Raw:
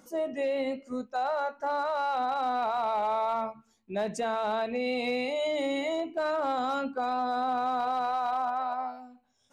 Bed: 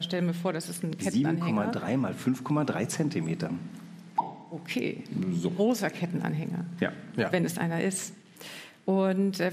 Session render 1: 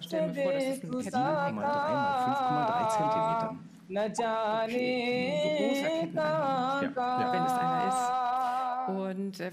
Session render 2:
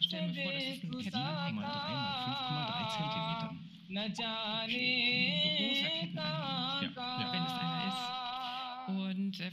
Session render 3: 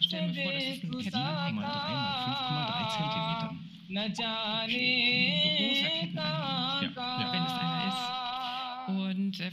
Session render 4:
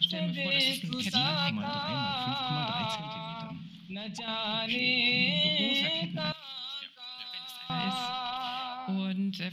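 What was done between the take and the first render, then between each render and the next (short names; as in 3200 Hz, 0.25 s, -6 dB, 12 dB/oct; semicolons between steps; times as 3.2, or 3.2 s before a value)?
add bed -8.5 dB
EQ curve 200 Hz 0 dB, 340 Hz -17 dB, 590 Hz -15 dB, 1100 Hz -9 dB, 1700 Hz -9 dB, 3300 Hz +14 dB, 8100 Hz -18 dB, 12000 Hz -9 dB
gain +4.5 dB
0.51–1.5 high shelf 2400 Hz +12 dB; 2.95–4.28 compressor, threshold -35 dBFS; 6.32–7.7 differentiator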